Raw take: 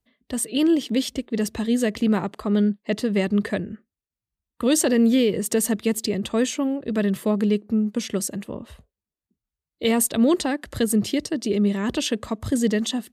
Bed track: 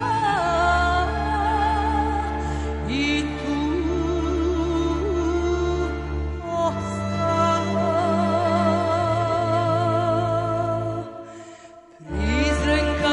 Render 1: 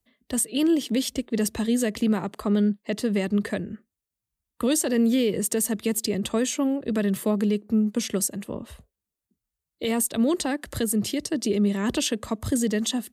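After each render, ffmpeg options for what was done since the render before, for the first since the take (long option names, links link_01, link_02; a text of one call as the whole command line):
ffmpeg -i in.wav -filter_complex "[0:a]acrossover=split=190|6700[link_01][link_02][link_03];[link_03]acontrast=57[link_04];[link_01][link_02][link_04]amix=inputs=3:normalize=0,alimiter=limit=-14.5dB:level=0:latency=1:release=251" out.wav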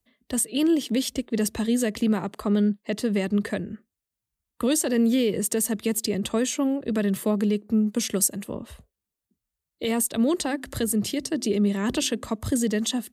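ffmpeg -i in.wav -filter_complex "[0:a]asettb=1/sr,asplit=3[link_01][link_02][link_03];[link_01]atrim=end=7.924[link_04];[link_02]atrim=start=7.92:end=8.56,asetpts=PTS-STARTPTS,afade=type=in:duration=0.004:curve=qsin,afade=type=out:start_time=0.636:duration=0.004:curve=qsin,highshelf=frequency=6400:gain=6[link_05];[link_03]atrim=start=8.556[link_06];[link_04][link_05]acrossfade=duration=0.004:curve1=hsin:curve2=qsin[link_07];[link_07][link_06]acrossfade=duration=0.004:curve1=qsin:curve2=hsin,asettb=1/sr,asplit=3[link_08][link_09][link_10];[link_08]atrim=end=10.424[link_11];[link_09]atrim=start=10.42:end=12.26,asetpts=PTS-STARTPTS,afade=type=in:duration=0.004:curve=qsin,afade=type=out:start_time=1.836:duration=0.004:curve=qsin,bandreject=frequency=87.01:width_type=h:width=4,bandreject=frequency=174.02:width_type=h:width=4,bandreject=frequency=261.03:width_type=h:width=4,bandreject=frequency=348.04:width_type=h:width=4[link_12];[link_10]atrim=start=12.256[link_13];[link_11][link_12]acrossfade=duration=0.004:curve1=hsin:curve2=qsin[link_14];[link_14][link_13]acrossfade=duration=0.004:curve1=qsin:curve2=hsin" out.wav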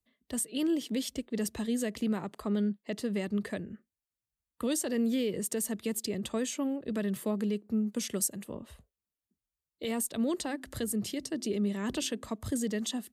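ffmpeg -i in.wav -af "volume=-8dB" out.wav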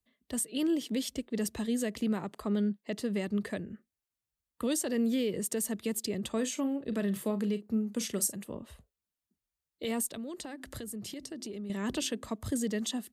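ffmpeg -i in.wav -filter_complex "[0:a]asettb=1/sr,asplit=3[link_01][link_02][link_03];[link_01]atrim=end=6.324[link_04];[link_02]atrim=start=6.32:end=8.36,asetpts=PTS-STARTPTS,afade=type=in:duration=0.004:curve=qsin,afade=type=out:start_time=2.036:duration=0.004:curve=qsin,asplit=2[link_05][link_06];[link_06]adelay=40,volume=-12.5dB[link_07];[link_05][link_07]amix=inputs=2:normalize=0,atrim=end_sample=89964[link_08];[link_03]atrim=start=8.356[link_09];[link_04][link_08]acrossfade=duration=0.004:curve1=hsin:curve2=qsin[link_10];[link_10][link_09]acrossfade=duration=0.004:curve1=qsin:curve2=hsin,asettb=1/sr,asplit=3[link_11][link_12][link_13];[link_11]atrim=end=10.124[link_14];[link_12]atrim=start=10.12:end=11.7,asetpts=PTS-STARTPTS,afade=type=in:duration=0.004:curve=qsin,afade=type=out:start_time=1.576:duration=0.004:curve=qsin,acompressor=threshold=-37dB:ratio=6:attack=3.2:release=140:knee=1:detection=peak[link_15];[link_13]atrim=start=11.696[link_16];[link_14][link_15]acrossfade=duration=0.004:curve1=hsin:curve2=qsin[link_17];[link_17][link_16]acrossfade=duration=0.004:curve1=qsin:curve2=hsin" out.wav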